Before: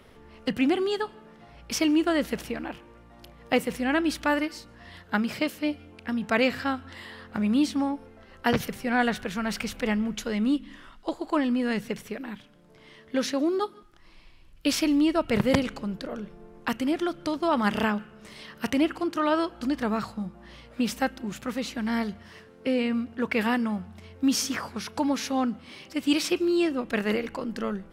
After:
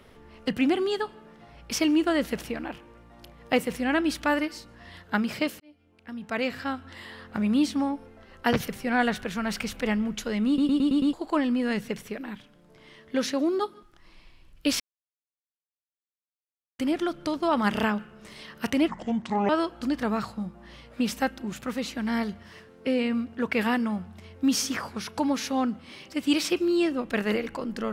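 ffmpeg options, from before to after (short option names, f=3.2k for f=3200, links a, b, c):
-filter_complex "[0:a]asplit=12[a][b][c][d][e][f][g][h][i][j][k][l];[a]atrim=end=5.6,asetpts=PTS-STARTPTS,afade=t=out:st=5.596:d=0.004:c=hsin[m];[b]atrim=start=5.6:end=10.582,asetpts=PTS-STARTPTS,afade=t=in:d=1.51[n];[c]atrim=start=10.468:end=10.582[o];[d]atrim=start=10.468:end=10.582[p];[e]atrim=start=10.468:end=10.582[q];[f]atrim=start=10.468:end=10.582[r];[g]atrim=start=10.468:end=10.582[s];[h]atrim=start=11.128:end=14.8,asetpts=PTS-STARTPTS,afade=t=out:st=3.668:d=0.004:c=hsin[t];[i]atrim=start=14.8:end=16.79,asetpts=PTS-STARTPTS,volume=0[u];[j]atrim=start=16.79:end=18.884,asetpts=PTS-STARTPTS,afade=t=in:d=0.004:c=hsin[v];[k]atrim=start=18.88:end=19.29,asetpts=PTS-STARTPTS,asetrate=29547,aresample=44100[w];[l]atrim=start=19.286[x];[m][n]concat=n=2:v=0:a=1[y];[y][o]acrossfade=d=0.004:c1=hsin:c2=hsin[z];[z][p]acrossfade=d=0.004:c1=hsin:c2=hsin[aa];[aa][q]acrossfade=d=0.004:c1=hsin:c2=hsin[ab];[ab][r]acrossfade=d=0.004:c1=hsin:c2=hsin[ac];[ac][s]acrossfade=d=0.004:c1=hsin:c2=hsin[ad];[t][u][v]concat=n=3:v=0:a=1[ae];[ad][ae]acrossfade=d=0.004:c1=hsin:c2=hsin[af];[af][w]acrossfade=d=0.004:c1=hsin:c2=hsin[ag];[ag][x]acrossfade=d=0.004:c1=hsin:c2=hsin"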